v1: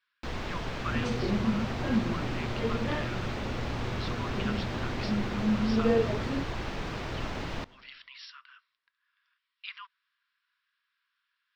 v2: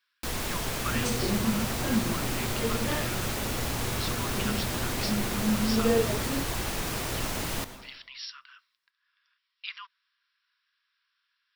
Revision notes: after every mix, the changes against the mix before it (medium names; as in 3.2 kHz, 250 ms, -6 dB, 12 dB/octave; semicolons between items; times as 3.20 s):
first sound: send +11.5 dB; master: remove distance through air 200 m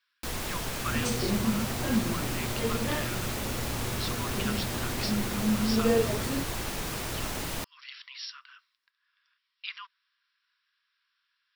reverb: off